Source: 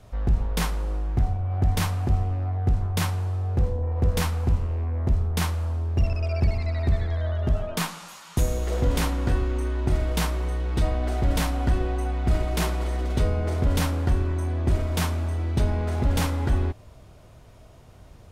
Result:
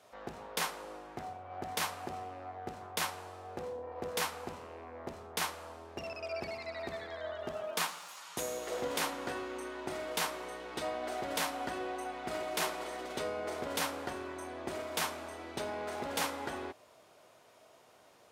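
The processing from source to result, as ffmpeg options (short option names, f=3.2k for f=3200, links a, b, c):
-filter_complex "[0:a]asettb=1/sr,asplit=3[a][b][c];[a]atrim=end=7.404[d];[b]atrim=start=7.4:end=8.17,asetpts=PTS-STARTPTS,afade=t=in:d=0.004:c=qsin,afade=t=out:st=0.766:d=0.004:c=qsin,aeval=exprs='sgn(val(0))*max(abs(val(0))-0.00188,0)':c=same[e];[c]atrim=start=8.166[f];[d][e]acrossfade=d=0.004:c1=hsin:c2=qsin[g];[g][f]acrossfade=d=0.004:c1=qsin:c2=hsin,highpass=460,volume=-3.5dB"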